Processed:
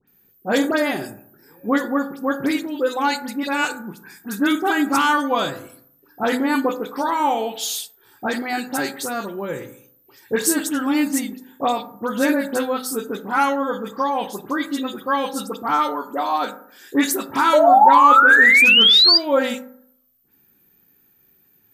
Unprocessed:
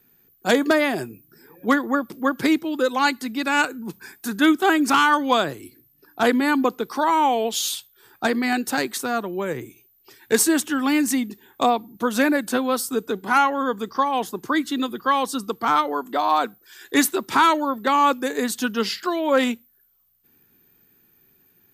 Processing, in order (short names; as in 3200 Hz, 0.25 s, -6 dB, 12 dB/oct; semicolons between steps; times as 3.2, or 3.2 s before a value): high shelf 9500 Hz +4 dB; dispersion highs, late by 76 ms, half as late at 2200 Hz; painted sound rise, 17.53–19.18, 580–4900 Hz -10 dBFS; on a send: reverb RT60 0.65 s, pre-delay 3 ms, DRR 7 dB; on the sum: gain -2 dB